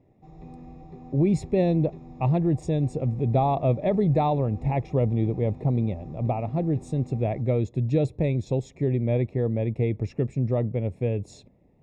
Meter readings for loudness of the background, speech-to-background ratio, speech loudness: −45.0 LKFS, 19.5 dB, −25.5 LKFS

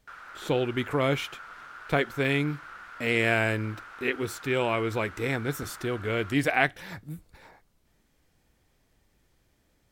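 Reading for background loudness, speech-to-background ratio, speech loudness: −44.5 LKFS, 16.5 dB, −28.0 LKFS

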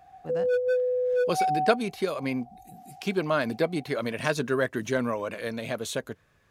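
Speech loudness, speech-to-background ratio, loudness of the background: −29.0 LKFS, −2.5 dB, −26.5 LKFS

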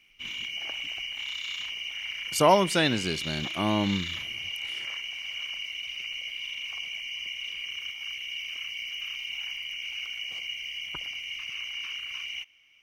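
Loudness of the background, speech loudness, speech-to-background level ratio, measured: −33.0 LKFS, −26.0 LKFS, 7.0 dB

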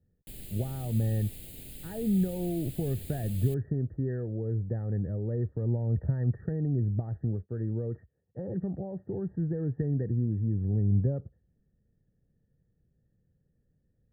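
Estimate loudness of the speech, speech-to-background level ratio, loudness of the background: −31.0 LKFS, 13.5 dB, −44.5 LKFS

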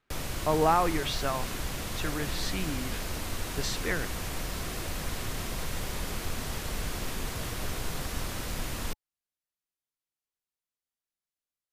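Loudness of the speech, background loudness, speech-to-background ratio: −31.0 LKFS, −35.5 LKFS, 4.5 dB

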